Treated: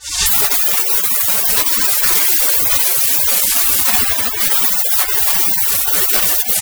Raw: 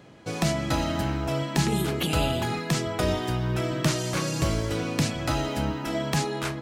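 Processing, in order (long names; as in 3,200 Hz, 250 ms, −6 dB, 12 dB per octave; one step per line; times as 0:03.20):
fade in at the beginning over 0.63 s
mid-hump overdrive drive 37 dB, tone 7,800 Hz, clips at −11.5 dBFS
0:01.90–0:04.06: low-shelf EQ 120 Hz +9 dB
sine wavefolder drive 15 dB, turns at −7 dBFS
far-end echo of a speakerphone 300 ms, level −7 dB
gate on every frequency bin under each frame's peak −25 dB weak
high-shelf EQ 2,100 Hz −8 dB
boost into a limiter +27.5 dB
level −1 dB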